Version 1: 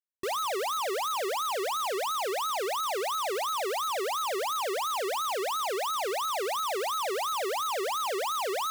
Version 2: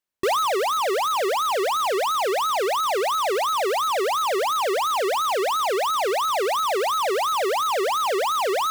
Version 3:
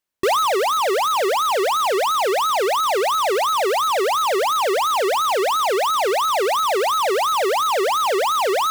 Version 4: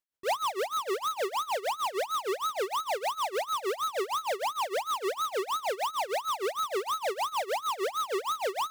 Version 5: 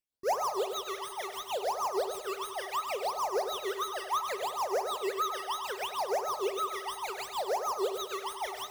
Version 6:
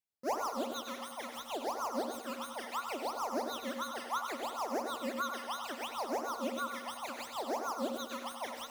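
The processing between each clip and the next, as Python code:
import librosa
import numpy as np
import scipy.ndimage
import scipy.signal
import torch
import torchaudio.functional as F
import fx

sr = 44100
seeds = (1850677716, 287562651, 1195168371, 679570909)

y1 = fx.high_shelf(x, sr, hz=4100.0, db=-5.5)
y1 = fx.rider(y1, sr, range_db=10, speed_s=0.5)
y1 = F.gain(torch.from_numpy(y1), 8.5).numpy()
y2 = fx.comb_fb(y1, sr, f0_hz=300.0, decay_s=0.41, harmonics='odd', damping=0.0, mix_pct=30)
y2 = F.gain(torch.from_numpy(y2), 6.5).numpy()
y3 = fx.rider(y2, sr, range_db=10, speed_s=0.5)
y3 = y3 * (1.0 - 0.89 / 2.0 + 0.89 / 2.0 * np.cos(2.0 * np.pi * 6.5 * (np.arange(len(y3)) / sr)))
y3 = F.gain(torch.from_numpy(y3), -8.5).numpy()
y4 = fx.phaser_stages(y3, sr, stages=12, low_hz=400.0, high_hz=3400.0, hz=0.69, feedback_pct=35)
y4 = fx.echo_feedback(y4, sr, ms=100, feedback_pct=38, wet_db=-8)
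y4 = fx.rev_fdn(y4, sr, rt60_s=1.3, lf_ratio=1.0, hf_ratio=0.35, size_ms=24.0, drr_db=12.5)
y5 = y4 * np.sin(2.0 * np.pi * 150.0 * np.arange(len(y4)) / sr)
y5 = y5 + 10.0 ** (-11.5 / 20.0) * np.pad(y5, (int(87 * sr / 1000.0), 0))[:len(y5)]
y5 = F.gain(torch.from_numpy(y5), -2.0).numpy()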